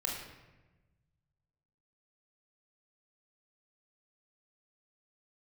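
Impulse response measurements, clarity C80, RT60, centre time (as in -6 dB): 5.0 dB, 1.1 s, 56 ms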